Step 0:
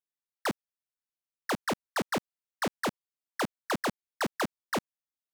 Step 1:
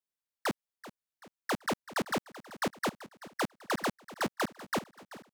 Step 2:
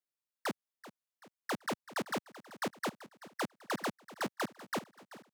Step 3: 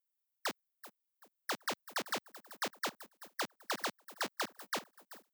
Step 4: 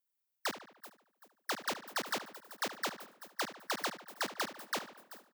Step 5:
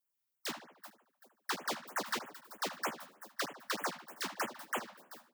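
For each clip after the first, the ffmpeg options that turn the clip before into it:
-af "aecho=1:1:384|768|1152|1536:0.15|0.0733|0.0359|0.0176,volume=-1.5dB"
-af "highpass=110,volume=-4dB"
-filter_complex "[0:a]aemphasis=mode=production:type=riaa,acrossover=split=6000[a][b];[b]acompressor=threshold=-38dB:ratio=4:attack=1:release=60[c];[a][c]amix=inputs=2:normalize=0,afftdn=nr=13:nf=-53,volume=-1.5dB"
-filter_complex "[0:a]asplit=2[a][b];[b]adelay=73,lowpass=f=4.2k:p=1,volume=-11.5dB,asplit=2[c][d];[d]adelay=73,lowpass=f=4.2k:p=1,volume=0.51,asplit=2[e][f];[f]adelay=73,lowpass=f=4.2k:p=1,volume=0.51,asplit=2[g][h];[h]adelay=73,lowpass=f=4.2k:p=1,volume=0.51,asplit=2[i][j];[j]adelay=73,lowpass=f=4.2k:p=1,volume=0.51[k];[a][c][e][g][i][k]amix=inputs=6:normalize=0,volume=1dB"
-af "equalizer=f=990:t=o:w=0.77:g=2,flanger=delay=6.7:depth=6.6:regen=2:speed=0.86:shape=triangular,afftfilt=real='re*(1-between(b*sr/1024,360*pow(4800/360,0.5+0.5*sin(2*PI*3.2*pts/sr))/1.41,360*pow(4800/360,0.5+0.5*sin(2*PI*3.2*pts/sr))*1.41))':imag='im*(1-between(b*sr/1024,360*pow(4800/360,0.5+0.5*sin(2*PI*3.2*pts/sr))/1.41,360*pow(4800/360,0.5+0.5*sin(2*PI*3.2*pts/sr))*1.41))':win_size=1024:overlap=0.75,volume=3dB"

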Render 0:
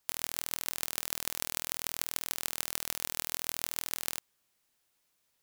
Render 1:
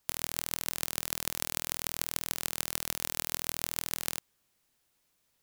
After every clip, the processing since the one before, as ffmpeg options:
-af "lowshelf=f=330:g=6,volume=1dB"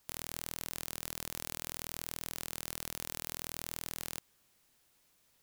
-af "alimiter=limit=-8.5dB:level=0:latency=1:release=106,asoftclip=type=tanh:threshold=-16dB,volume=4dB"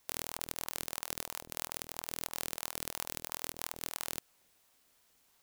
-af "aeval=exprs='val(0)*sin(2*PI*620*n/s+620*0.6/3*sin(2*PI*3*n/s))':c=same,volume=4dB"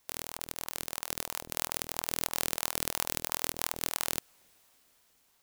-af "dynaudnorm=f=500:g=5:m=11.5dB"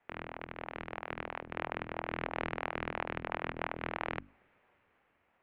-af "bandreject=f=50:t=h:w=6,bandreject=f=100:t=h:w=6,bandreject=f=150:t=h:w=6,bandreject=f=200:t=h:w=6,bandreject=f=250:t=h:w=6,bandreject=f=300:t=h:w=6,bandreject=f=350:t=h:w=6,bandreject=f=400:t=h:w=6,bandreject=f=450:t=h:w=6,bandreject=f=500:t=h:w=6,highpass=f=220:t=q:w=0.5412,highpass=f=220:t=q:w=1.307,lowpass=f=2.6k:t=q:w=0.5176,lowpass=f=2.6k:t=q:w=0.7071,lowpass=f=2.6k:t=q:w=1.932,afreqshift=-180,volume=3dB"

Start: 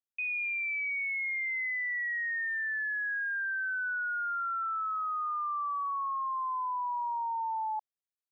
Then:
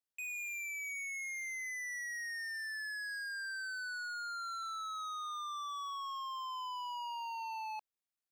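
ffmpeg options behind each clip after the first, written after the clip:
-af "asoftclip=type=hard:threshold=-39.5dB,volume=-1dB"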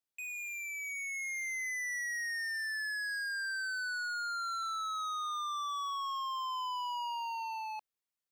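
-af "dynaudnorm=f=320:g=7:m=4.5dB"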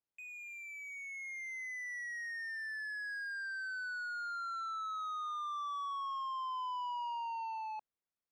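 -af "lowpass=f=1.1k:p=1,volume=1dB"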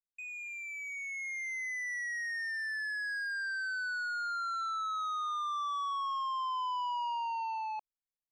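-af "anlmdn=0.0158,highshelf=f=4k:g=7,volume=4dB"

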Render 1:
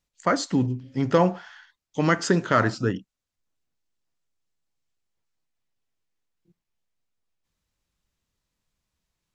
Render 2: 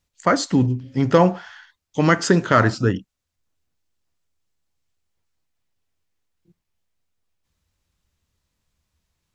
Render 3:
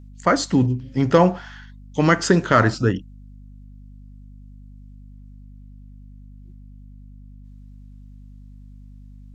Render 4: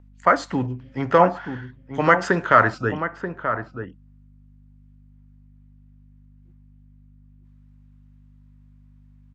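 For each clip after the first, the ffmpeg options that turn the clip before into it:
-af "equalizer=f=80:t=o:w=0.6:g=9,volume=4.5dB"
-af "aeval=exprs='val(0)+0.00891*(sin(2*PI*50*n/s)+sin(2*PI*2*50*n/s)/2+sin(2*PI*3*50*n/s)/3+sin(2*PI*4*50*n/s)/4+sin(2*PI*5*50*n/s)/5)':c=same"
-filter_complex "[0:a]acrossover=split=580 2400:gain=0.251 1 0.141[a][b][c];[a][b][c]amix=inputs=3:normalize=0,asplit=2[d][e];[e]adelay=932.9,volume=-8dB,highshelf=f=4k:g=-21[f];[d][f]amix=inputs=2:normalize=0,volume=4dB"

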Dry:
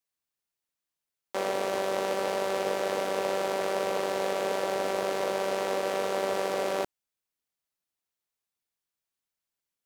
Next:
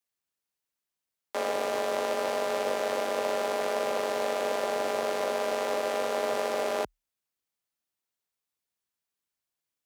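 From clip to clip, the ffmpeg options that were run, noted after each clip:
-af "afreqshift=36"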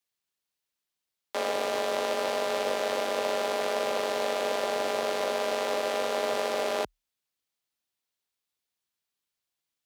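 -af "equalizer=f=3.7k:w=1.1:g=4.5"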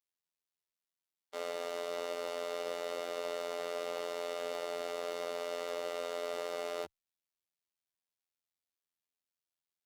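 -af "afftfilt=real='hypot(re,im)*cos(PI*b)':imag='0':win_size=2048:overlap=0.75,volume=-7dB"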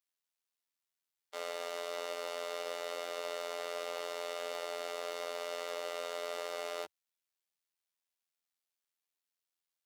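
-af "highpass=f=700:p=1,volume=2dB"

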